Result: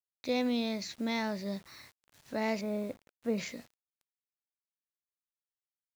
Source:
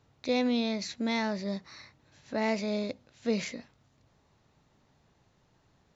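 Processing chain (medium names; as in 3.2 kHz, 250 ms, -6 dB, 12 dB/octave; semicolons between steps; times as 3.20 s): 2.61–3.38 s: low-pass 1.7 kHz 12 dB/octave; bit crusher 9-bit; trim -3 dB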